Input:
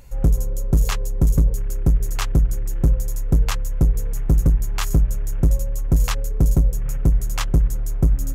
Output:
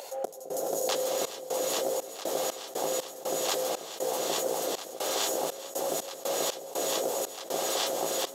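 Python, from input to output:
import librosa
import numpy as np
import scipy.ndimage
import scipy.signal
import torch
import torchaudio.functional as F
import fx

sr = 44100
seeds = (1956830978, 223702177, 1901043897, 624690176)

p1 = scipy.signal.sosfilt(scipy.signal.butter(4, 560.0, 'highpass', fs=sr, output='sos'), x)
p2 = fx.band_shelf(p1, sr, hz=1600.0, db=-12.5, octaves=1.7)
p3 = p2 + fx.echo_alternate(p2, sr, ms=211, hz=840.0, feedback_pct=86, wet_db=-2.5, dry=0)
p4 = fx.rev_gated(p3, sr, seeds[0], gate_ms=470, shape='rising', drr_db=0.0)
p5 = fx.step_gate(p4, sr, bpm=60, pattern='x.xxx.xx.x.x.x', floor_db=-24.0, edge_ms=4.5)
p6 = fx.high_shelf(p5, sr, hz=4500.0, db=-11.5)
p7 = 10.0 ** (-23.0 / 20.0) * np.tanh(p6 / 10.0 ** (-23.0 / 20.0))
p8 = fx.env_flatten(p7, sr, amount_pct=50)
y = p8 * 10.0 ** (5.5 / 20.0)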